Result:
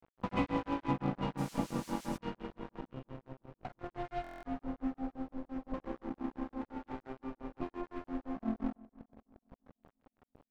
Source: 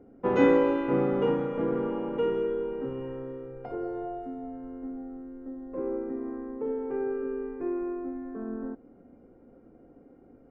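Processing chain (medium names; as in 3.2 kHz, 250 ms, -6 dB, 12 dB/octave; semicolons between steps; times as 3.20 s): compression 2:1, threshold -43 dBFS, peak gain reduction 14.5 dB; overload inside the chain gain 31 dB; bass shelf 380 Hz +4.5 dB; static phaser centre 1.6 kHz, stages 6; de-hum 79.42 Hz, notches 29; tremolo triangle 5.8 Hz, depth 100%; 2.81–3.84 s: feedback comb 320 Hz, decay 0.18 s, harmonics all, mix 50%; crossover distortion -54.5 dBFS; filtered feedback delay 332 ms, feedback 36%, low-pass 1.6 kHz, level -21 dB; 1.37–2.16 s: added noise blue -58 dBFS; distance through air 64 m; buffer glitch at 4.22 s, samples 1024, times 8; trim +14 dB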